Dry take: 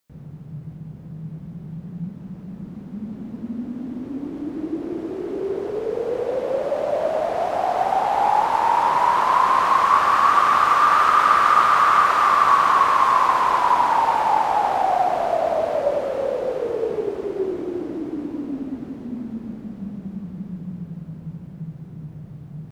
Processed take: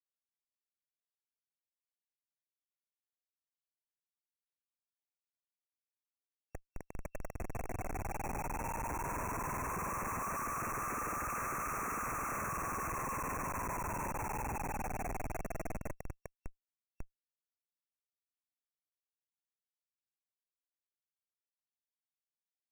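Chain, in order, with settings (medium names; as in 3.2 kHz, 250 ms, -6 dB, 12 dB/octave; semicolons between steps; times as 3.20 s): on a send: thinning echo 150 ms, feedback 81%, high-pass 500 Hz, level -4 dB; on the sum: AM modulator 20 Hz, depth 45%; differentiator; Schmitt trigger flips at -34.5 dBFS; FFT band-reject 2.7–5.6 kHz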